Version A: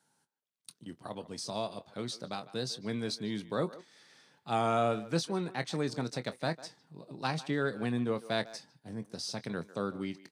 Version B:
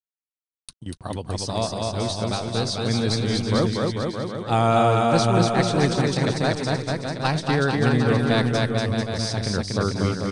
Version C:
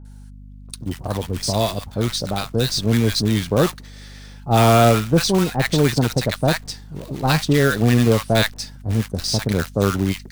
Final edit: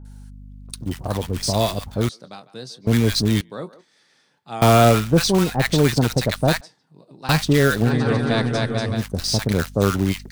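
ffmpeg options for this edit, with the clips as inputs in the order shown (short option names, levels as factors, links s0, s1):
-filter_complex "[0:a]asplit=3[s0][s1][s2];[2:a]asplit=5[s3][s4][s5][s6][s7];[s3]atrim=end=2.092[s8];[s0]atrim=start=2.088:end=2.872[s9];[s4]atrim=start=2.868:end=3.412[s10];[s1]atrim=start=3.408:end=4.622[s11];[s5]atrim=start=4.618:end=6.612[s12];[s2]atrim=start=6.608:end=7.292[s13];[s6]atrim=start=7.288:end=7.92[s14];[1:a]atrim=start=7.82:end=9.05[s15];[s7]atrim=start=8.95[s16];[s8][s9]acrossfade=d=0.004:c1=hsin:c2=hsin[s17];[s17][s10]acrossfade=d=0.004:c1=hsin:c2=hsin[s18];[s18][s11]acrossfade=d=0.004:c1=hsin:c2=hsin[s19];[s19][s12]acrossfade=d=0.004:c1=hsin:c2=hsin[s20];[s20][s13]acrossfade=d=0.004:c1=hsin:c2=hsin[s21];[s21][s14]acrossfade=d=0.004:c1=hsin:c2=hsin[s22];[s22][s15]acrossfade=d=0.1:c1=tri:c2=tri[s23];[s23][s16]acrossfade=d=0.1:c1=tri:c2=tri"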